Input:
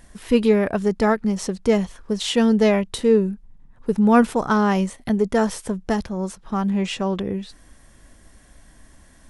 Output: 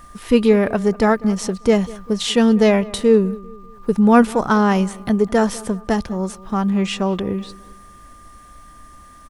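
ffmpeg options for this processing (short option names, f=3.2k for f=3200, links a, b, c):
-filter_complex "[0:a]acrusher=bits=10:mix=0:aa=0.000001,aeval=exprs='val(0)+0.00501*sin(2*PI*1200*n/s)':c=same,asplit=2[a][b];[b]adelay=197,lowpass=f=2.2k:p=1,volume=-20dB,asplit=2[c][d];[d]adelay=197,lowpass=f=2.2k:p=1,volume=0.42,asplit=2[e][f];[f]adelay=197,lowpass=f=2.2k:p=1,volume=0.42[g];[a][c][e][g]amix=inputs=4:normalize=0,volume=3dB"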